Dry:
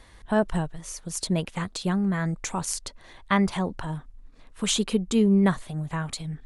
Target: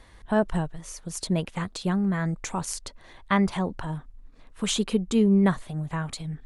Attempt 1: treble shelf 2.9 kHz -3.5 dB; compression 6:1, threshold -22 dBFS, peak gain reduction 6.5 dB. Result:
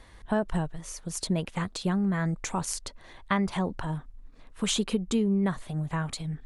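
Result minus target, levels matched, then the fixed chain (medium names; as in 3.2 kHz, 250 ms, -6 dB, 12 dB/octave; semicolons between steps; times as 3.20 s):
compression: peak gain reduction +6.5 dB
treble shelf 2.9 kHz -3.5 dB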